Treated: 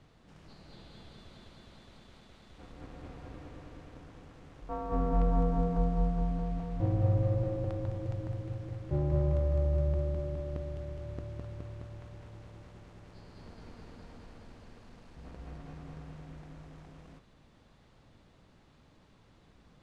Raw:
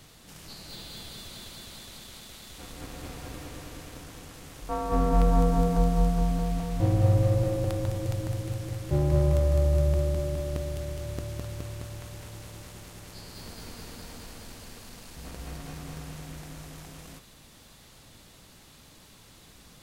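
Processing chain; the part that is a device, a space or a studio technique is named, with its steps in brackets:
through cloth (low-pass filter 7,400 Hz 12 dB per octave; high-shelf EQ 3,100 Hz −17.5 dB)
level −5.5 dB

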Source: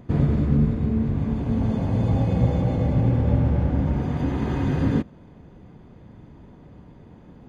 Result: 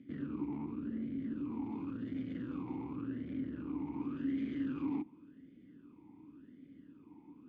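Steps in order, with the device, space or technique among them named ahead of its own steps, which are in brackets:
talk box (tube saturation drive 28 dB, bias 0.5; formant filter swept between two vowels i-u 0.9 Hz)
level +3 dB

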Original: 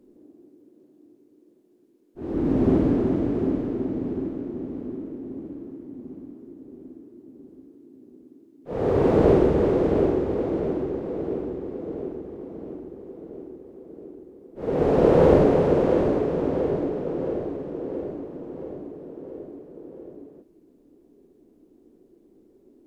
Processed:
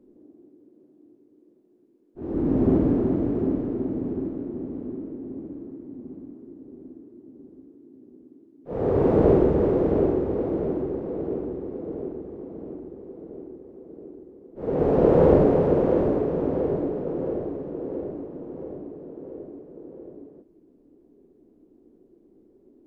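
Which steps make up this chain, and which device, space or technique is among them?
through cloth (high-shelf EQ 2,000 Hz −12 dB)

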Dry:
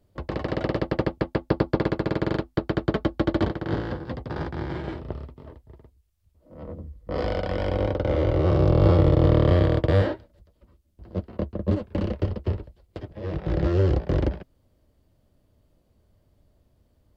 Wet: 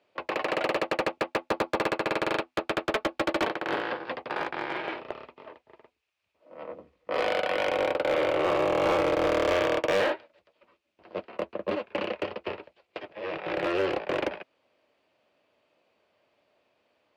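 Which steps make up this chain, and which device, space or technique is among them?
megaphone (band-pass filter 620–3,700 Hz; parametric band 2,500 Hz +10 dB 0.35 octaves; hard clipping −26 dBFS, distortion −11 dB)
level +6 dB

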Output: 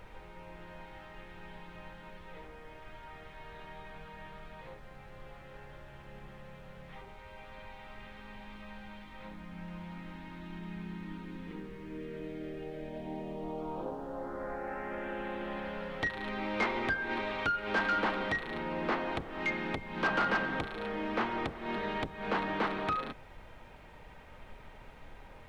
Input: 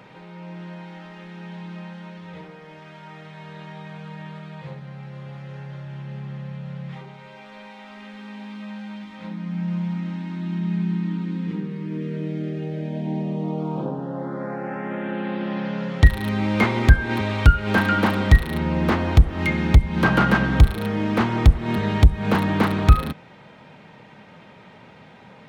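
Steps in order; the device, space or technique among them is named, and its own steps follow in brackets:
aircraft cabin announcement (band-pass filter 370–3,600 Hz; soft clipping −15.5 dBFS, distortion −17 dB; brown noise bed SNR 13 dB)
level −6.5 dB

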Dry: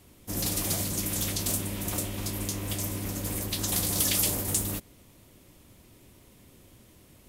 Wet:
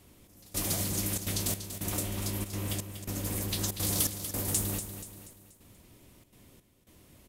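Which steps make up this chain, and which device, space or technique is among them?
trance gate with a delay (gate pattern "xxx...xxxxxxx." 166 BPM −24 dB; repeating echo 240 ms, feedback 45%, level −10 dB)
level −2 dB

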